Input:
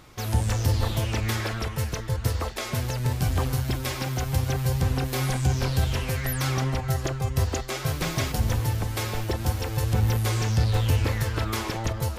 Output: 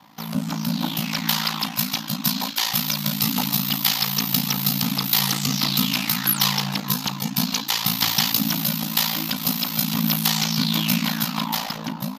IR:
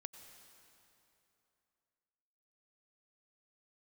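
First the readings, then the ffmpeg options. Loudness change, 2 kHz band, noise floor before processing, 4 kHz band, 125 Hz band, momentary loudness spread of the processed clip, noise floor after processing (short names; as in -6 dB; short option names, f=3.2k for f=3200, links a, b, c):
+5.0 dB, +4.5 dB, -34 dBFS, +13.0 dB, -6.0 dB, 5 LU, -33 dBFS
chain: -filter_complex "[0:a]firequalizer=gain_entry='entry(150,0);entry(240,-24);entry(1200,10);entry(1900,0);entry(4300,4);entry(9300,-9);entry(14000,8)':delay=0.05:min_phase=1,acrossover=split=3000[a][b];[b]dynaudnorm=f=170:g=13:m=16.5dB[c];[a][c]amix=inputs=2:normalize=0,afreqshift=-300,aeval=exprs='val(0)*sin(2*PI*28*n/s)':c=same,volume=1dB"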